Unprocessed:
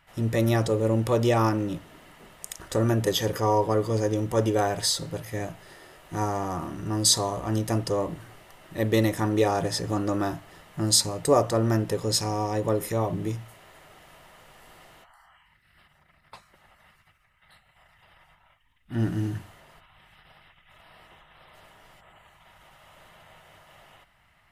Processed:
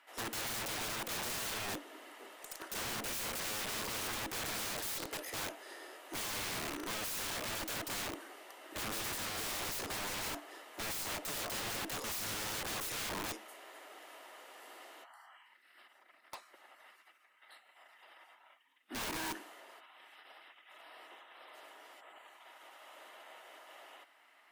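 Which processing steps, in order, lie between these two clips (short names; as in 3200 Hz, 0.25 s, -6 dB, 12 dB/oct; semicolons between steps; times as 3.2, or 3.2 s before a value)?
steep high-pass 270 Hz 48 dB/oct; tube stage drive 21 dB, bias 0.35; wrapped overs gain 34.5 dB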